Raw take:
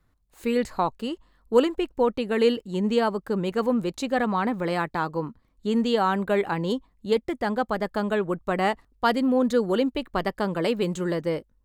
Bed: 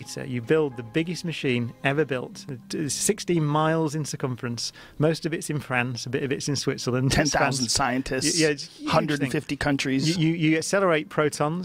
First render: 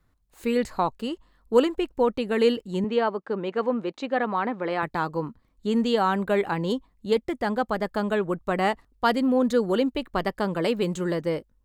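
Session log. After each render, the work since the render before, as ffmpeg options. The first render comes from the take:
-filter_complex "[0:a]asettb=1/sr,asplit=3[a][b][c];[a]atrim=end=2.844[d];[b]atrim=start=2.84:end=4.83,asetpts=PTS-STARTPTS,afade=t=in:d=0.004:c=qsin,afade=t=out:st=1.986:d=0.004:c=qsin,highpass=270,lowpass=3.2k[e];[c]atrim=start=4.826[f];[d][e]acrossfade=d=0.004:c1=hsin:c2=qsin[g];[g][f]acrossfade=d=0.004:c1=qsin:c2=hsin"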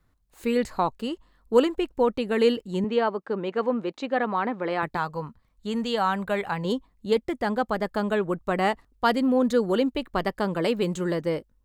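-filter_complex "[0:a]asettb=1/sr,asplit=3[a][b][c];[a]atrim=end=4.974[d];[b]atrim=start=4.97:end=6.65,asetpts=PTS-STARTPTS,afade=t=in:d=0.004:c=qsin,afade=t=out:st=1.676:d=0.004:c=qsin,equalizer=f=320:t=o:w=0.84:g=-11.5[e];[c]atrim=start=6.646[f];[d][e]acrossfade=d=0.004:c1=hsin:c2=qsin[g];[g][f]acrossfade=d=0.004:c1=qsin:c2=hsin"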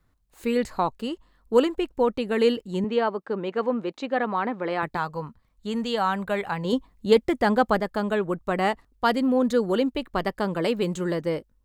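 -filter_complex "[0:a]asplit=3[a][b][c];[a]atrim=end=6.732[d];[b]atrim=start=6.728:end=7.802,asetpts=PTS-STARTPTS,volume=5dB[e];[c]atrim=start=7.798[f];[d][e]acrossfade=d=0.004:c1=hsin:c2=hsin[g];[g][f]acrossfade=d=0.004:c1=hsin:c2=hsin"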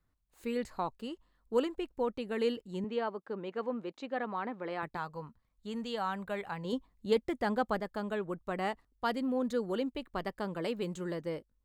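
-af "volume=-10.5dB"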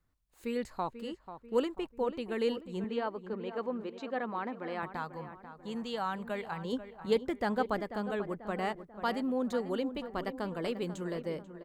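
-filter_complex "[0:a]asplit=2[a][b];[b]adelay=490,lowpass=f=2k:p=1,volume=-11dB,asplit=2[c][d];[d]adelay=490,lowpass=f=2k:p=1,volume=0.5,asplit=2[e][f];[f]adelay=490,lowpass=f=2k:p=1,volume=0.5,asplit=2[g][h];[h]adelay=490,lowpass=f=2k:p=1,volume=0.5,asplit=2[i][j];[j]adelay=490,lowpass=f=2k:p=1,volume=0.5[k];[a][c][e][g][i][k]amix=inputs=6:normalize=0"

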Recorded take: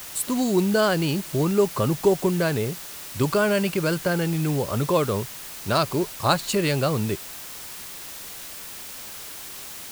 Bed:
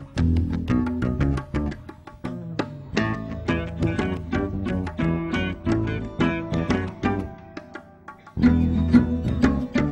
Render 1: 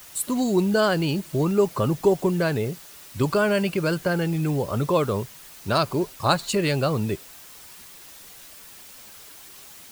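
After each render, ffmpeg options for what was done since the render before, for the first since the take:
-af "afftdn=nr=8:nf=-38"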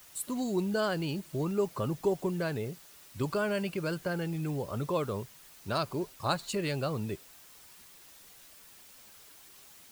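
-af "volume=-9.5dB"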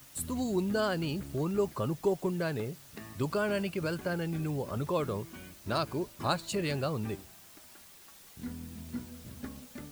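-filter_complex "[1:a]volume=-23.5dB[a];[0:a][a]amix=inputs=2:normalize=0"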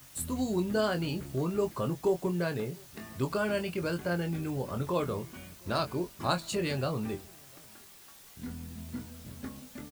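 -filter_complex "[0:a]asplit=2[a][b];[b]adelay=23,volume=-7dB[c];[a][c]amix=inputs=2:normalize=0,asplit=2[d][e];[e]adelay=699.7,volume=-29dB,highshelf=f=4k:g=-15.7[f];[d][f]amix=inputs=2:normalize=0"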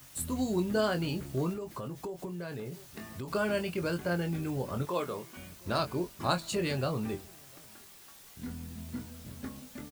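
-filter_complex "[0:a]asettb=1/sr,asplit=3[a][b][c];[a]atrim=end=1.534[d];[b]atrim=start=1.53:end=3.28,asetpts=PTS-STARTPTS,afade=t=in:d=0.004:c=qsin,afade=t=out:st=1.746:d=0.004:c=qsin,acompressor=threshold=-35dB:ratio=8:attack=3.2:release=140:knee=1:detection=peak[e];[c]atrim=start=3.276[f];[d][e]acrossfade=d=0.004:c1=hsin:c2=qsin[g];[g][f]acrossfade=d=0.004:c1=qsin:c2=hsin,asettb=1/sr,asplit=3[h][i][j];[h]atrim=end=4.854[k];[i]atrim=start=4.85:end=5.37,asetpts=PTS-STARTPTS,afade=t=in:d=0.004:c=qsin,afade=t=out:st=0.516:d=0.004:c=qsin,highpass=f=400:p=1[l];[j]atrim=start=5.366[m];[k][l]acrossfade=d=0.004:c1=hsin:c2=qsin[n];[n][m]acrossfade=d=0.004:c1=qsin:c2=hsin"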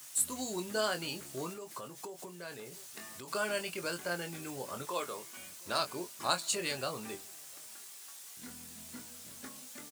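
-af "highpass=f=780:p=1,equalizer=f=8.2k:w=0.81:g=8"

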